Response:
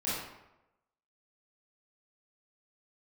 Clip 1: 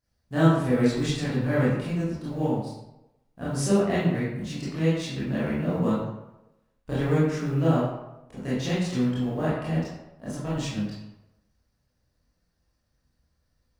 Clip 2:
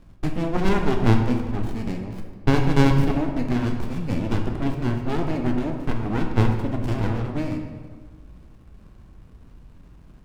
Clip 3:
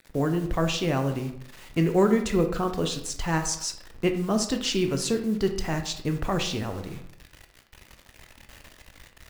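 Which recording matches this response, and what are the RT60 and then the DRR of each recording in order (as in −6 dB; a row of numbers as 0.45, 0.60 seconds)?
1; 0.95, 1.6, 0.70 seconds; −11.0, 3.0, 5.5 decibels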